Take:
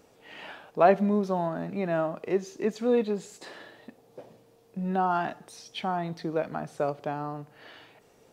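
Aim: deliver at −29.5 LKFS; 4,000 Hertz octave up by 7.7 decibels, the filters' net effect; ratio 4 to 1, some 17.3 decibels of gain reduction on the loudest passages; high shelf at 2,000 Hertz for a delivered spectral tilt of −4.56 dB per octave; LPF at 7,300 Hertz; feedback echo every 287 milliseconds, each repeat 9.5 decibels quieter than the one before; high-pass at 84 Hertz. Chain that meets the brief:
high-pass filter 84 Hz
low-pass filter 7,300 Hz
high-shelf EQ 2,000 Hz +5.5 dB
parametric band 4,000 Hz +5 dB
downward compressor 4 to 1, threshold −35 dBFS
repeating echo 287 ms, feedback 33%, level −9.5 dB
level +9 dB

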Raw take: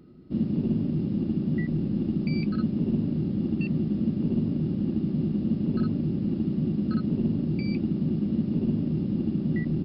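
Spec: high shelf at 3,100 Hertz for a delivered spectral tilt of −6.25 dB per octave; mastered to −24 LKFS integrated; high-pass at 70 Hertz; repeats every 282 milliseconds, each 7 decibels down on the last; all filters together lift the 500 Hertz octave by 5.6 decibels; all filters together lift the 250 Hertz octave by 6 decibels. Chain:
high-pass filter 70 Hz
parametric band 250 Hz +6.5 dB
parametric band 500 Hz +4.5 dB
high-shelf EQ 3,100 Hz +8 dB
repeating echo 282 ms, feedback 45%, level −7 dB
level −3 dB

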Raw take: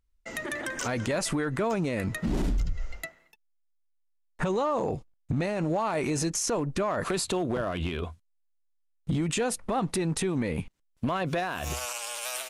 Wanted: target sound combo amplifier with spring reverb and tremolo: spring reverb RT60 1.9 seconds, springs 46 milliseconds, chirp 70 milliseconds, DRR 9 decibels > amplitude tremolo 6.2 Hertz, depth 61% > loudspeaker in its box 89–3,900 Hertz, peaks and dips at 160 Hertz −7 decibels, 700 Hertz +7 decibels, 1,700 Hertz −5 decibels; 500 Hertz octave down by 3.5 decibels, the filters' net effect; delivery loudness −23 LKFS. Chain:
parametric band 500 Hz −7.5 dB
spring reverb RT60 1.9 s, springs 46 ms, chirp 70 ms, DRR 9 dB
amplitude tremolo 6.2 Hz, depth 61%
loudspeaker in its box 89–3,900 Hz, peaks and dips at 160 Hz −7 dB, 700 Hz +7 dB, 1,700 Hz −5 dB
level +12.5 dB

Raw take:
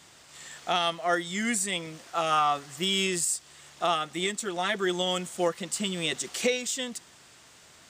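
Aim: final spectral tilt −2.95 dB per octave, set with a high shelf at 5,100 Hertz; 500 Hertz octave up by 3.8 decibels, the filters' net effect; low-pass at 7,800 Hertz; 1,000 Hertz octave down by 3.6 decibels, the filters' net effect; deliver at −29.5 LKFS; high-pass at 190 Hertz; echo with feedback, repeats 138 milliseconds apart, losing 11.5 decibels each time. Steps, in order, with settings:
high-pass filter 190 Hz
low-pass filter 7,800 Hz
parametric band 500 Hz +7.5 dB
parametric band 1,000 Hz −9 dB
high-shelf EQ 5,100 Hz −4.5 dB
repeating echo 138 ms, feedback 27%, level −11.5 dB
level −1 dB

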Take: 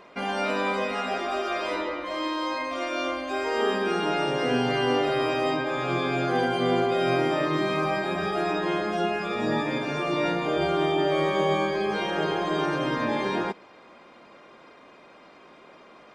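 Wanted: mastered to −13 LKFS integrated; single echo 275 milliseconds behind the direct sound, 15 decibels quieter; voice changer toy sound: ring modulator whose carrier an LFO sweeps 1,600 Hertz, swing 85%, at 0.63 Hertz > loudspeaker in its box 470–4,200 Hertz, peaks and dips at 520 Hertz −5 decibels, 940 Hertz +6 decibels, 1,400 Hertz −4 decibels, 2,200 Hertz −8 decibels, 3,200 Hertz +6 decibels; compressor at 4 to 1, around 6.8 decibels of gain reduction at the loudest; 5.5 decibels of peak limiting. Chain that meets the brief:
downward compressor 4 to 1, threshold −28 dBFS
brickwall limiter −24 dBFS
single-tap delay 275 ms −15 dB
ring modulator whose carrier an LFO sweeps 1,600 Hz, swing 85%, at 0.63 Hz
loudspeaker in its box 470–4,200 Hz, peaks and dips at 520 Hz −5 dB, 940 Hz +6 dB, 1,400 Hz −4 dB, 2,200 Hz −8 dB, 3,200 Hz +6 dB
level +21.5 dB

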